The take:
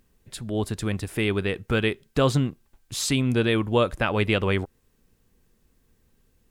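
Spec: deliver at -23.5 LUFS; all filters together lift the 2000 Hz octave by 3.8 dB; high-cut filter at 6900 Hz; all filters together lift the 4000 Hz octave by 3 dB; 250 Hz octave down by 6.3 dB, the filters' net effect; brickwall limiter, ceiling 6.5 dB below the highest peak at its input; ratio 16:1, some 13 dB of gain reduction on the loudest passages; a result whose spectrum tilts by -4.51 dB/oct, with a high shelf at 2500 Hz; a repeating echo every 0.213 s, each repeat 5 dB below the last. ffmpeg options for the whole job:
-af "lowpass=6.9k,equalizer=f=250:t=o:g=-8.5,equalizer=f=2k:t=o:g=5.5,highshelf=f=2.5k:g=-4.5,equalizer=f=4k:t=o:g=6,acompressor=threshold=-30dB:ratio=16,alimiter=level_in=1dB:limit=-24dB:level=0:latency=1,volume=-1dB,aecho=1:1:213|426|639|852|1065|1278|1491:0.562|0.315|0.176|0.0988|0.0553|0.031|0.0173,volume=12.5dB"

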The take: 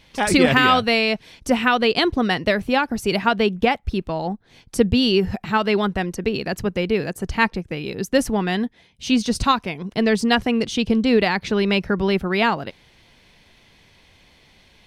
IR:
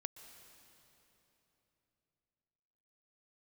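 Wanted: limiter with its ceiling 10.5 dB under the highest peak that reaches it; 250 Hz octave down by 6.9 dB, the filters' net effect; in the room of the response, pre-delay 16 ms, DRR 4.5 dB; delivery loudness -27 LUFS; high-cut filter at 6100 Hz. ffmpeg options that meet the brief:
-filter_complex "[0:a]lowpass=6.1k,equalizer=f=250:t=o:g=-8.5,alimiter=limit=-12.5dB:level=0:latency=1,asplit=2[a][b];[1:a]atrim=start_sample=2205,adelay=16[c];[b][c]afir=irnorm=-1:irlink=0,volume=-1dB[d];[a][d]amix=inputs=2:normalize=0,volume=-3.5dB"

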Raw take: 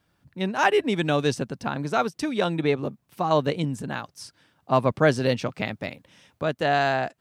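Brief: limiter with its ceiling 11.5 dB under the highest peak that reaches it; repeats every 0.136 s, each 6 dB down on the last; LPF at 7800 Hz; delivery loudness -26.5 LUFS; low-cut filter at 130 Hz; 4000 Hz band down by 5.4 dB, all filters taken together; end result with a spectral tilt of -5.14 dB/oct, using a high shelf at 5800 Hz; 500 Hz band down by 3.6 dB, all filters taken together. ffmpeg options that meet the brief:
-af "highpass=130,lowpass=7.8k,equalizer=f=500:t=o:g=-4.5,equalizer=f=4k:t=o:g=-9,highshelf=f=5.8k:g=5.5,alimiter=limit=-19dB:level=0:latency=1,aecho=1:1:136|272|408|544|680|816:0.501|0.251|0.125|0.0626|0.0313|0.0157,volume=4dB"

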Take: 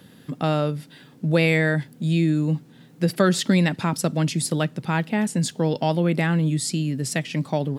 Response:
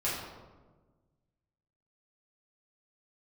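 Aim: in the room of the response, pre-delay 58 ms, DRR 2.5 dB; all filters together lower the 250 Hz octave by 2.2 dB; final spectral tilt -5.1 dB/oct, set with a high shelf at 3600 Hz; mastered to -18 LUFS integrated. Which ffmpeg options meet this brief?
-filter_complex "[0:a]equalizer=f=250:t=o:g=-4,highshelf=f=3.6k:g=3.5,asplit=2[a][b];[1:a]atrim=start_sample=2205,adelay=58[c];[b][c]afir=irnorm=-1:irlink=0,volume=-10dB[d];[a][d]amix=inputs=2:normalize=0,volume=3.5dB"

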